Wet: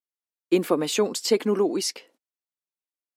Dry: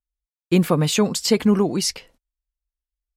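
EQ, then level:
four-pole ladder high-pass 260 Hz, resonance 40%
+3.5 dB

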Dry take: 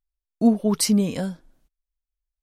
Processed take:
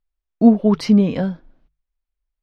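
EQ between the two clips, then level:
high-frequency loss of the air 280 metres
mains-hum notches 50/100/150 Hz
+6.5 dB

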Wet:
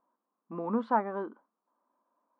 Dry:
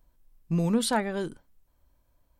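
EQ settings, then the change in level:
linear-phase brick-wall high-pass 190 Hz
low-pass with resonance 1,100 Hz, resonance Q 4.2
high-frequency loss of the air 80 metres
−5.0 dB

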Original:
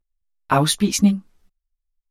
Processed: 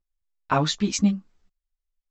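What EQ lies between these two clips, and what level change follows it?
Chebyshev low-pass filter 7,800 Hz, order 8
−4.0 dB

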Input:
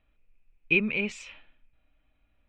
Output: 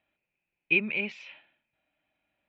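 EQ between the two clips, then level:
high-frequency loss of the air 160 metres
loudspeaker in its box 240–5,700 Hz, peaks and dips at 260 Hz −9 dB, 460 Hz −9 dB, 1,200 Hz −9 dB
+2.0 dB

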